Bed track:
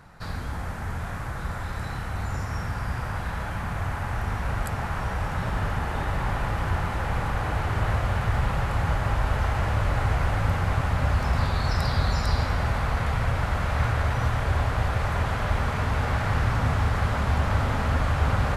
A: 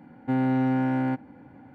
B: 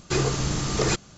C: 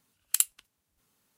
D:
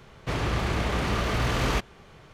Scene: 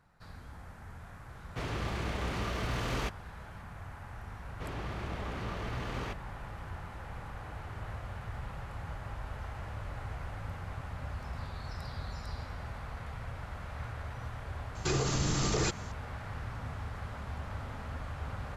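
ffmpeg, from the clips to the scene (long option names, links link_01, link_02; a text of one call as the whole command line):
ffmpeg -i bed.wav -i cue0.wav -i cue1.wav -i cue2.wav -i cue3.wav -filter_complex "[4:a]asplit=2[link_01][link_02];[0:a]volume=-16.5dB[link_03];[link_02]highshelf=frequency=4300:gain=-8[link_04];[2:a]alimiter=limit=-20.5dB:level=0:latency=1:release=76[link_05];[link_01]atrim=end=2.33,asetpts=PTS-STARTPTS,volume=-8.5dB,afade=type=in:duration=0.004:curve=hsin,afade=type=out:start_time=2.326:duration=0.004:curve=hsin,adelay=1290[link_06];[link_04]atrim=end=2.33,asetpts=PTS-STARTPTS,volume=-12dB,afade=type=in:duration=0.004:curve=hsin,afade=type=out:start_time=2.326:duration=0.004:curve=hsin,adelay=190953S[link_07];[link_05]atrim=end=1.17,asetpts=PTS-STARTPTS,volume=-0.5dB,afade=type=in:duration=0.004:curve=hsin,afade=type=out:start_time=1.166:duration=0.004:curve=hsin,adelay=14750[link_08];[link_03][link_06][link_07][link_08]amix=inputs=4:normalize=0" out.wav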